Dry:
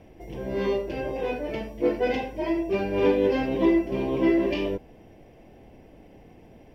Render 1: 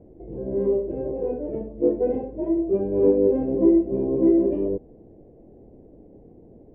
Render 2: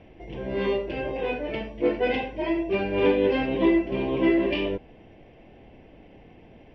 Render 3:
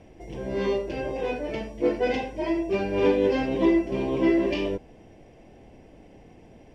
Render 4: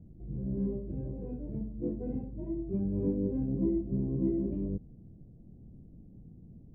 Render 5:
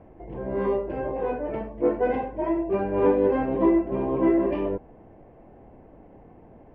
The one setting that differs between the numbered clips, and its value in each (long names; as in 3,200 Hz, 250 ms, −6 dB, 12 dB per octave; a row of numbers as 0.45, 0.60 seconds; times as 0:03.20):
low-pass with resonance, frequency: 440, 3,100, 8,000, 170, 1,200 Hertz